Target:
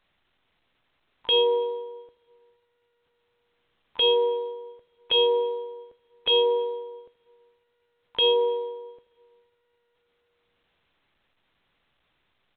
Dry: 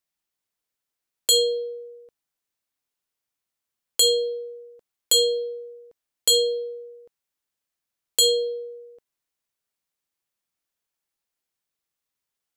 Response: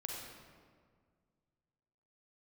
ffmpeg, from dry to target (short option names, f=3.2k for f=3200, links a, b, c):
-filter_complex "[0:a]lowshelf=f=99:g=9,aecho=1:1:81:0.0708,asplit=2[a][b];[1:a]atrim=start_sample=2205,highshelf=f=11k:g=-11.5,adelay=82[c];[b][c]afir=irnorm=-1:irlink=0,volume=-14.5dB[d];[a][d]amix=inputs=2:normalize=0,asplit=3[e][f][g];[f]asetrate=35002,aresample=44100,atempo=1.25992,volume=-16dB[h];[g]asetrate=88200,aresample=44100,atempo=0.5,volume=-12dB[i];[e][h][i]amix=inputs=3:normalize=0" -ar 8000 -c:a pcm_alaw